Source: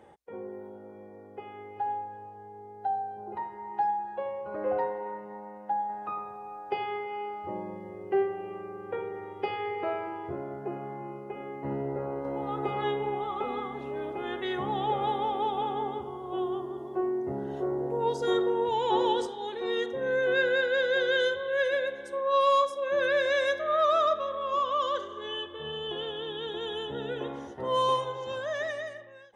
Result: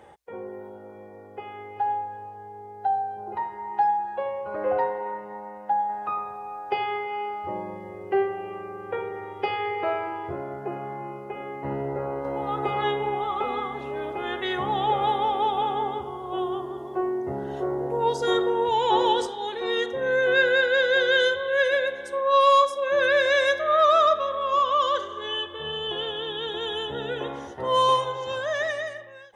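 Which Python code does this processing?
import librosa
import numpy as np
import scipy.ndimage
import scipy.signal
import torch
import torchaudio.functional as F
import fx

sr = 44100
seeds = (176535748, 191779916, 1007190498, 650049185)

y = fx.peak_eq(x, sr, hz=240.0, db=-6.5, octaves=2.0)
y = y * librosa.db_to_amplitude(7.0)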